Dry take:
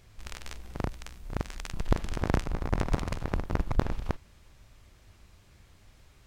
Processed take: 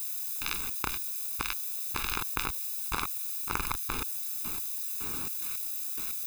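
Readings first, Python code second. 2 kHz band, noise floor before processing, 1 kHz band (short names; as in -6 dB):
+4.5 dB, -58 dBFS, +1.5 dB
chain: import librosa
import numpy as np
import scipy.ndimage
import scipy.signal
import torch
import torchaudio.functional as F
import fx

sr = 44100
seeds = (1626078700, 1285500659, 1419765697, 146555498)

p1 = fx.dmg_wind(x, sr, seeds[0], corner_hz=270.0, level_db=-46.0)
p2 = scipy.signal.sosfilt(scipy.signal.butter(2, 3500.0, 'lowpass', fs=sr, output='sos'), p1)
p3 = fx.peak_eq(p2, sr, hz=140.0, db=-10.0, octaves=2.6)
p4 = p3 + fx.echo_single(p3, sr, ms=526, db=-14.5, dry=0)
p5 = fx.step_gate(p4, sr, bpm=108, pattern='...xx.x...x', floor_db=-60.0, edge_ms=4.5)
p6 = fx.dmg_noise_colour(p5, sr, seeds[1], colour='blue', level_db=-63.0)
p7 = fx.quant_companded(p6, sr, bits=4)
p8 = p6 + F.gain(torch.from_numpy(p7), -6.5).numpy()
p9 = fx.tilt_eq(p8, sr, slope=3.5)
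p10 = p9 + 0.93 * np.pad(p9, (int(0.8 * sr / 1000.0), 0))[:len(p9)]
p11 = fx.env_flatten(p10, sr, amount_pct=70)
y = F.gain(torch.from_numpy(p11), -3.0).numpy()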